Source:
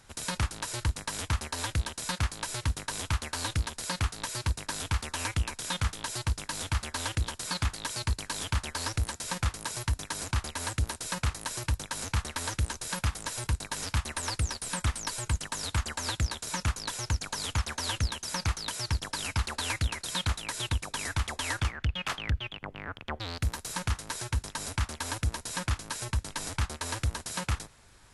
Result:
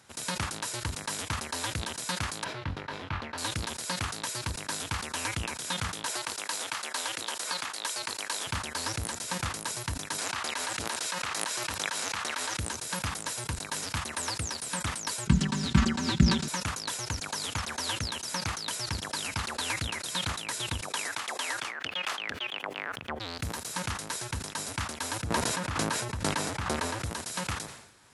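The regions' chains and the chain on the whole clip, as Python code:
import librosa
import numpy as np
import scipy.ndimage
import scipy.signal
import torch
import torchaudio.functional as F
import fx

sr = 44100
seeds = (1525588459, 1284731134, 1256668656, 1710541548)

y = fx.chain(x, sr, fx.air_absorb(metres=330.0),
    fx.doubler(ms=22.0, db=-7), at=(2.44, 3.38))
y = fx.chain(y, sr, fx.highpass(hz=440.0, slope=12),
    fx.band_squash(depth_pct=100), at=(6.06, 8.47))
y = fx.chain(y, sr, fx.highpass(hz=790.0, slope=6),
    fx.high_shelf(hz=7200.0, db=-10.0),
    fx.env_flatten(amount_pct=100), at=(10.18, 12.57))
y = fx.chain(y, sr, fx.lowpass(hz=5700.0, slope=12),
    fx.low_shelf_res(hz=360.0, db=13.5, q=1.5),
    fx.comb(ms=5.2, depth=0.73), at=(15.27, 16.48))
y = fx.chain(y, sr, fx.highpass(hz=400.0, slope=12),
    fx.band_squash(depth_pct=100), at=(20.88, 22.96))
y = fx.chain(y, sr, fx.high_shelf(hz=3000.0, db=-9.5),
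    fx.sustainer(db_per_s=24.0), at=(25.22, 27.04))
y = scipy.signal.sosfilt(scipy.signal.butter(2, 130.0, 'highpass', fs=sr, output='sos'), y)
y = fx.sustainer(y, sr, db_per_s=68.0)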